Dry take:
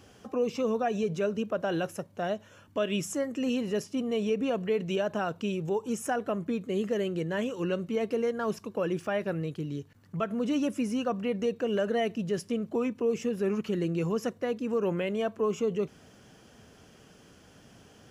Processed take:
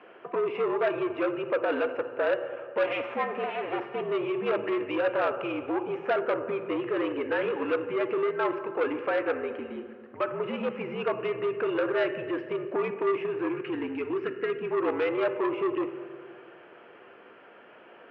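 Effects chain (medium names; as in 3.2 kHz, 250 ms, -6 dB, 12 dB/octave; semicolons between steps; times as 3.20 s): 2.83–4.01 s: comb filter that takes the minimum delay 6.4 ms; 13.49–14.71 s: high-order bell 850 Hz -15.5 dB 1.2 oct; peak limiter -23.5 dBFS, peak gain reduction 6 dB; reverberation RT60 2.0 s, pre-delay 3 ms, DRR 7.5 dB; mistuned SSB -67 Hz 430–2600 Hz; transformer saturation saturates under 1 kHz; trim +8.5 dB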